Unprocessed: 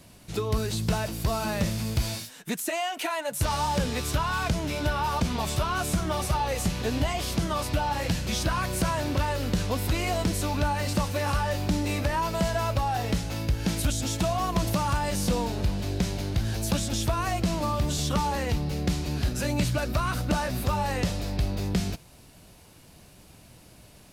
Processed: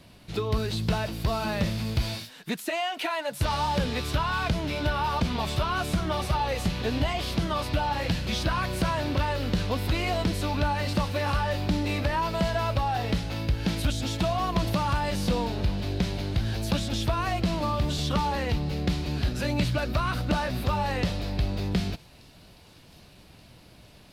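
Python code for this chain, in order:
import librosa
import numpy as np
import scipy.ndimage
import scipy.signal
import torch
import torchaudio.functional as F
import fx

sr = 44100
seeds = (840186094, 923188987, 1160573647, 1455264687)

y = fx.high_shelf_res(x, sr, hz=5300.0, db=-7.0, q=1.5)
y = fx.echo_wet_highpass(y, sr, ms=1179, feedback_pct=68, hz=4100.0, wet_db=-20.0)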